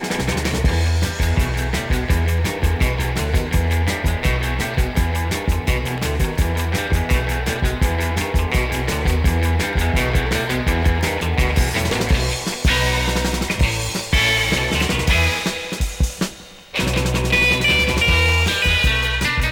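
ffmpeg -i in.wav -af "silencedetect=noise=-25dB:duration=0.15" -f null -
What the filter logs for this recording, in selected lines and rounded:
silence_start: 16.29
silence_end: 16.74 | silence_duration: 0.45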